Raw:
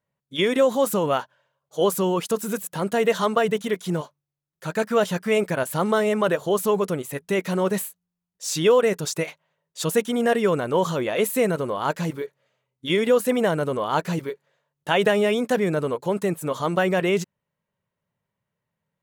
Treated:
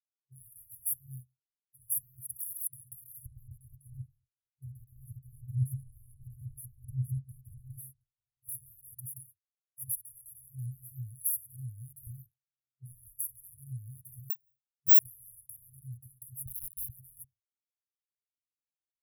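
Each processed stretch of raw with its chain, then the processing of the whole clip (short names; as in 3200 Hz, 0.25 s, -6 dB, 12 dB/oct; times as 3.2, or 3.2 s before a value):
3.26–8.49 RIAA curve playback + echo 0.72 s -22.5 dB
12.07–13.2 low shelf 140 Hz +6.5 dB + compressor 10:1, threshold -17 dBFS
14.3–14.99 tone controls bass +2 dB, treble +9 dB + careless resampling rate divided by 2×, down filtered, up zero stuff + mismatched tape noise reduction decoder only
16.46–16.9 steep high-pass 430 Hz 96 dB/oct + differentiator + companded quantiser 2-bit
whole clip: FFT band-reject 130–10000 Hz; expander -56 dBFS; gain +1.5 dB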